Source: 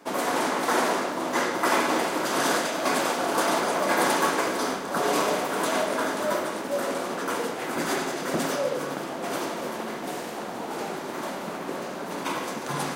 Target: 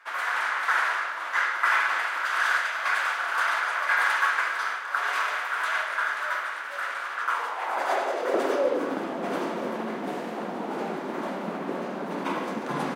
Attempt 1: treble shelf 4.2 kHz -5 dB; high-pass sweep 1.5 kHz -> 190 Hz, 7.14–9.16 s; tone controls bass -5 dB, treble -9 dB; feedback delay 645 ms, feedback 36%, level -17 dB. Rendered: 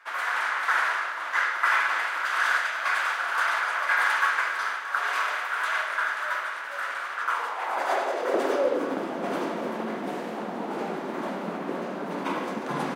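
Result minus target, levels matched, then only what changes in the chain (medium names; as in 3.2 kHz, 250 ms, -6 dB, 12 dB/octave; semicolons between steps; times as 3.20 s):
echo 429 ms early
change: feedback delay 1074 ms, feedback 36%, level -17 dB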